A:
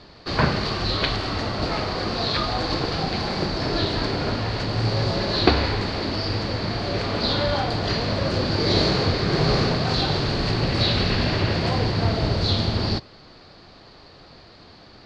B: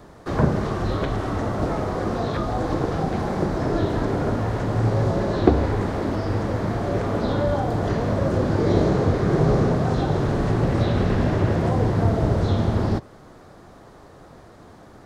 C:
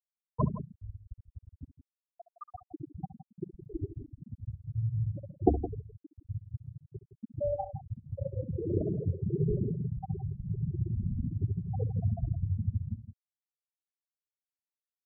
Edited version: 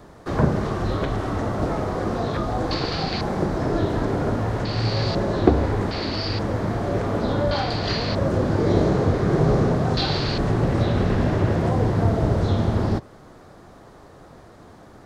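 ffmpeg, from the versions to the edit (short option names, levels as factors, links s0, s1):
-filter_complex "[0:a]asplit=5[s0][s1][s2][s3][s4];[1:a]asplit=6[s5][s6][s7][s8][s9][s10];[s5]atrim=end=2.712[s11];[s0]atrim=start=2.708:end=3.212[s12];[s6]atrim=start=3.208:end=4.652[s13];[s1]atrim=start=4.648:end=5.152[s14];[s7]atrim=start=5.148:end=5.912[s15];[s2]atrim=start=5.908:end=6.392[s16];[s8]atrim=start=6.388:end=7.512[s17];[s3]atrim=start=7.508:end=8.152[s18];[s9]atrim=start=8.148:end=9.972[s19];[s4]atrim=start=9.968:end=10.382[s20];[s10]atrim=start=10.378[s21];[s11][s12]acrossfade=d=0.004:c1=hsin:c2=hsin[s22];[s22][s13]acrossfade=d=0.004:c1=hsin:c2=hsin[s23];[s23][s14]acrossfade=d=0.004:c1=hsin:c2=hsin[s24];[s24][s15]acrossfade=d=0.004:c1=hsin:c2=hsin[s25];[s25][s16]acrossfade=d=0.004:c1=hsin:c2=hsin[s26];[s26][s17]acrossfade=d=0.004:c1=hsin:c2=hsin[s27];[s27][s18]acrossfade=d=0.004:c1=hsin:c2=hsin[s28];[s28][s19]acrossfade=d=0.004:c1=hsin:c2=hsin[s29];[s29][s20]acrossfade=d=0.004:c1=hsin:c2=hsin[s30];[s30][s21]acrossfade=d=0.004:c1=hsin:c2=hsin"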